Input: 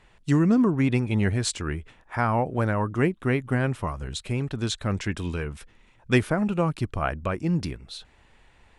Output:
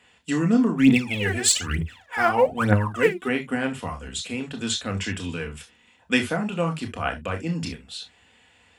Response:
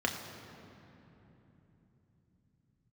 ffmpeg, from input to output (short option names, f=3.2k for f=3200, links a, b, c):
-filter_complex "[0:a]highpass=55,tiltshelf=f=920:g=-7.5[a];[1:a]atrim=start_sample=2205,atrim=end_sample=3528[b];[a][b]afir=irnorm=-1:irlink=0,asplit=3[c][d][e];[c]afade=t=out:st=0.76:d=0.02[f];[d]aphaser=in_gain=1:out_gain=1:delay=3:decay=0.78:speed=1.1:type=triangular,afade=t=in:st=0.76:d=0.02,afade=t=out:st=3.27:d=0.02[g];[e]afade=t=in:st=3.27:d=0.02[h];[f][g][h]amix=inputs=3:normalize=0,equalizer=f=1.8k:t=o:w=1.8:g=-7,volume=-2.5dB"